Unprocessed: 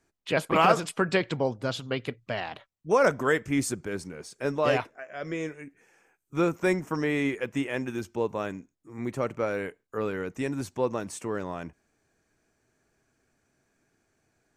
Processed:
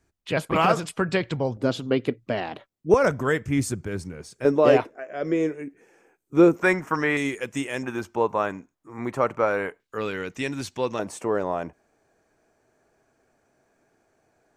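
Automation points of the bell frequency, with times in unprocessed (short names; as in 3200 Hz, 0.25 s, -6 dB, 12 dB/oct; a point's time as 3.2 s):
bell +11 dB 1.9 oct
65 Hz
from 1.57 s 310 Hz
from 2.94 s 84 Hz
from 4.45 s 370 Hz
from 6.62 s 1400 Hz
from 7.17 s 8000 Hz
from 7.83 s 1000 Hz
from 9.8 s 3500 Hz
from 10.99 s 650 Hz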